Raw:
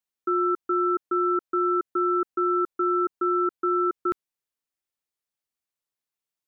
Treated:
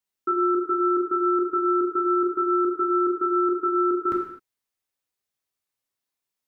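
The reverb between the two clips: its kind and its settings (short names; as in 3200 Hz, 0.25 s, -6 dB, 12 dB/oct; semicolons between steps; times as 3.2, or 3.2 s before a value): non-linear reverb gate 0.28 s falling, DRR -1.5 dB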